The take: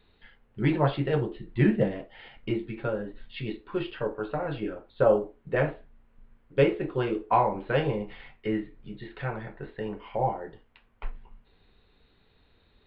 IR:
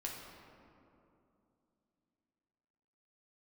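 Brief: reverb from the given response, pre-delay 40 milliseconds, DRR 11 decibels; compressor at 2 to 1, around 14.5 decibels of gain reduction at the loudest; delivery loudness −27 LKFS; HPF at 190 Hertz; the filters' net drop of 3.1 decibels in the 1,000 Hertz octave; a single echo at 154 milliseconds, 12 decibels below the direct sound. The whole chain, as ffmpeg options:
-filter_complex "[0:a]highpass=190,equalizer=frequency=1000:width_type=o:gain=-4,acompressor=threshold=-45dB:ratio=2,aecho=1:1:154:0.251,asplit=2[link_01][link_02];[1:a]atrim=start_sample=2205,adelay=40[link_03];[link_02][link_03]afir=irnorm=-1:irlink=0,volume=-11dB[link_04];[link_01][link_04]amix=inputs=2:normalize=0,volume=14.5dB"

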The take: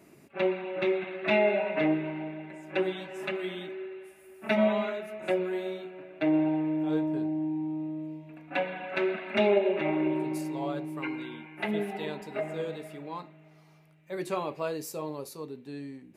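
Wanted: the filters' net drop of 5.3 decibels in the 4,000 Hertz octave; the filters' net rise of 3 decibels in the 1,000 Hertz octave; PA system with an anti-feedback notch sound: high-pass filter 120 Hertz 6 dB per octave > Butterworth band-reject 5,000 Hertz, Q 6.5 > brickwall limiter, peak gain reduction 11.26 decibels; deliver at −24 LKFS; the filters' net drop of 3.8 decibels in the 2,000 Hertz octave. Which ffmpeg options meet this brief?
ffmpeg -i in.wav -af "highpass=frequency=120:poles=1,asuperstop=centerf=5000:order=8:qfactor=6.5,equalizer=frequency=1000:width_type=o:gain=5,equalizer=frequency=2000:width_type=o:gain=-4.5,equalizer=frequency=4000:width_type=o:gain=-5.5,volume=10dB,alimiter=limit=-13.5dB:level=0:latency=1" out.wav

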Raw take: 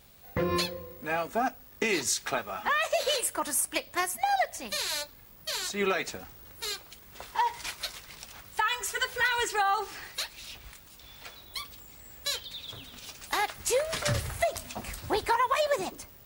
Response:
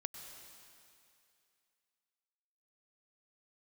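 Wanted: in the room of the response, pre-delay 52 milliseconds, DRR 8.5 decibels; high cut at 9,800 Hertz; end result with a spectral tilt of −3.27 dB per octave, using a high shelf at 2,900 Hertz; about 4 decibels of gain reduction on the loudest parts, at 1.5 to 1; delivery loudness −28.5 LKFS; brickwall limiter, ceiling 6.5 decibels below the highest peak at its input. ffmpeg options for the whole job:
-filter_complex "[0:a]lowpass=9800,highshelf=frequency=2900:gain=-9,acompressor=threshold=-34dB:ratio=1.5,alimiter=level_in=1dB:limit=-24dB:level=0:latency=1,volume=-1dB,asplit=2[link_01][link_02];[1:a]atrim=start_sample=2205,adelay=52[link_03];[link_02][link_03]afir=irnorm=-1:irlink=0,volume=-6.5dB[link_04];[link_01][link_04]amix=inputs=2:normalize=0,volume=8dB"

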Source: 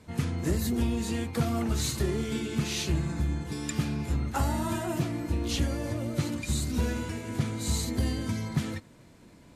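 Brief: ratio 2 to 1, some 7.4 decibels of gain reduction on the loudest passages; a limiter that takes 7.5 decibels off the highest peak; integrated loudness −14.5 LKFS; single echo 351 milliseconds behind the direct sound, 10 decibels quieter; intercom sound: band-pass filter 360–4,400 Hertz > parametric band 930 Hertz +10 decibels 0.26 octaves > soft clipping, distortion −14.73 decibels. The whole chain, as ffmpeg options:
ffmpeg -i in.wav -af "acompressor=threshold=-36dB:ratio=2,alimiter=level_in=4.5dB:limit=-24dB:level=0:latency=1,volume=-4.5dB,highpass=360,lowpass=4400,equalizer=frequency=930:width_type=o:width=0.26:gain=10,aecho=1:1:351:0.316,asoftclip=threshold=-36.5dB,volume=29.5dB" out.wav

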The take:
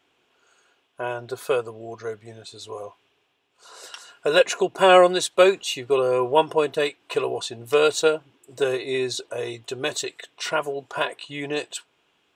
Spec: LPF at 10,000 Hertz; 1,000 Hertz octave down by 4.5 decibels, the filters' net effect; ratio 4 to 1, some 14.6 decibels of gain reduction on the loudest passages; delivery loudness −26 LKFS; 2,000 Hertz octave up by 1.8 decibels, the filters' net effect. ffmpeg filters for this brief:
ffmpeg -i in.wav -af "lowpass=10000,equalizer=frequency=1000:width_type=o:gain=-8,equalizer=frequency=2000:width_type=o:gain=5.5,acompressor=threshold=-29dB:ratio=4,volume=7dB" out.wav

